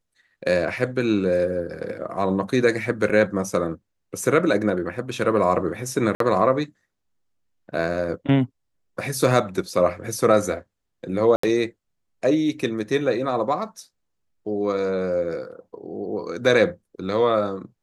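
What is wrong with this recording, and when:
0:03.09–0:03.10: drop-out 6 ms
0:06.15–0:06.20: drop-out 53 ms
0:11.36–0:11.43: drop-out 74 ms

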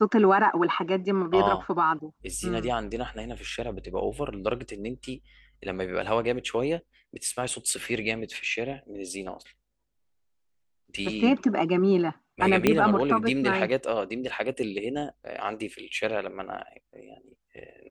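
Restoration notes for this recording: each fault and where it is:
0:12.67: click −6 dBFS

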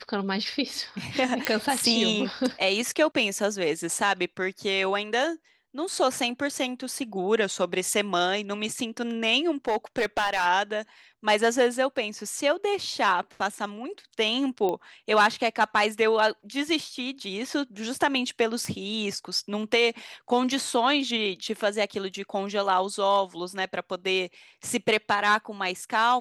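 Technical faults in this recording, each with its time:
0:01.45: click −8 dBFS
0:09.68–0:10.47: clipping −19.5 dBFS
0:14.69: click −16 dBFS
0:18.65: click −19 dBFS

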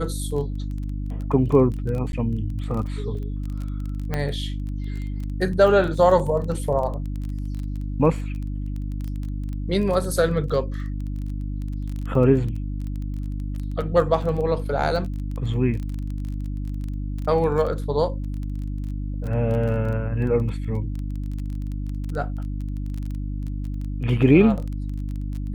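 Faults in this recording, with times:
surface crackle 19 per second −29 dBFS
mains hum 50 Hz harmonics 6 −28 dBFS
0:02.12–0:02.13: drop-out 11 ms
0:03.15: drop-out 2.3 ms
0:04.14: click −12 dBFS

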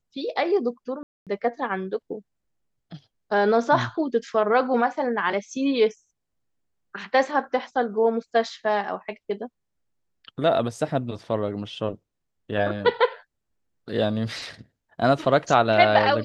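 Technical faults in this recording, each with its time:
0:01.03–0:01.27: drop-out 237 ms

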